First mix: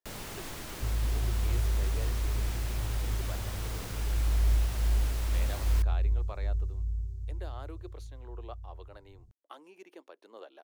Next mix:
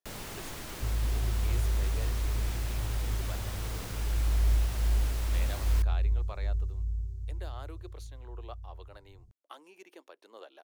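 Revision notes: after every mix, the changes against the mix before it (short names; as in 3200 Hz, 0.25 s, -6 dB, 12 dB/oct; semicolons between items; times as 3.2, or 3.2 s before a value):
speech: add tilt +1.5 dB/oct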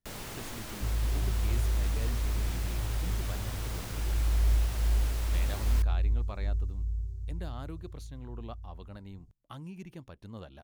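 speech: remove steep high-pass 350 Hz 36 dB/oct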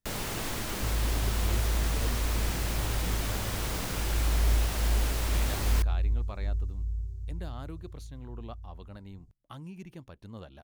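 first sound +7.0 dB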